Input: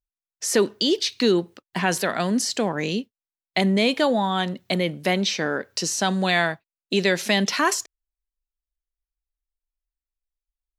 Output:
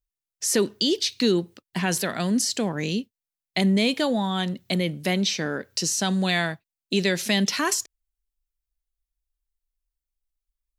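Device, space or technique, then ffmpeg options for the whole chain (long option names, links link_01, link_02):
smiley-face EQ: -af "lowshelf=frequency=140:gain=5.5,equalizer=frequency=890:width_type=o:width=2.7:gain=-6,highshelf=frequency=8200:gain=4"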